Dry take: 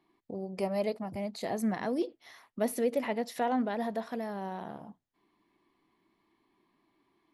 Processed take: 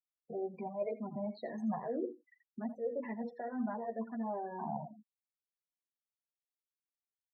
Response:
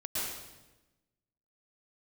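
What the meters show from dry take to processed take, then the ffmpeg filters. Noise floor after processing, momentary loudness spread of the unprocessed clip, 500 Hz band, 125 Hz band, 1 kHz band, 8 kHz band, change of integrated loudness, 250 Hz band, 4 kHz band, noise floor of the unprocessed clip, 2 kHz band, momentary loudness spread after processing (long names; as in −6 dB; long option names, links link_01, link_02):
below −85 dBFS, 12 LU, −6.0 dB, −5.0 dB, −6.0 dB, below −30 dB, −6.0 dB, −5.5 dB, below −15 dB, −76 dBFS, −11.0 dB, 6 LU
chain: -filter_complex "[0:a]alimiter=level_in=0.5dB:limit=-24dB:level=0:latency=1:release=239,volume=-0.5dB,bandreject=frequency=2100:width=26,flanger=delay=0.3:depth=1:regen=-69:speed=1:shape=triangular,bandreject=frequency=60:width_type=h:width=6,bandreject=frequency=120:width_type=h:width=6,bandreject=frequency=180:width_type=h:width=6,bandreject=frequency=240:width_type=h:width=6,bandreject=frequency=300:width_type=h:width=6,bandreject=frequency=360:width_type=h:width=6,bandreject=frequency=420:width_type=h:width=6,bandreject=frequency=480:width_type=h:width=6,asplit=2[link_01][link_02];[link_02]adelay=13,volume=-4dB[link_03];[link_01][link_03]amix=inputs=2:normalize=0,afftfilt=real='re*gte(hypot(re,im),0.01)':imag='im*gte(hypot(re,im),0.01)':win_size=1024:overlap=0.75,highpass=frequency=150:width=0.5412,highpass=frequency=150:width=1.3066,equalizer=frequency=320:width_type=q:width=4:gain=-7,equalizer=frequency=3200:width_type=q:width=4:gain=-8,equalizer=frequency=4600:width_type=q:width=4:gain=-6,equalizer=frequency=7100:width_type=q:width=4:gain=9,lowpass=frequency=9600:width=0.5412,lowpass=frequency=9600:width=1.3066,areverse,acompressor=threshold=-48dB:ratio=6,areverse,aemphasis=mode=reproduction:type=75fm,afftdn=noise_reduction=13:noise_floor=-65,aecho=1:1:83:0.178,asplit=2[link_04][link_05];[link_05]afreqshift=-2[link_06];[link_04][link_06]amix=inputs=2:normalize=1,volume=14dB"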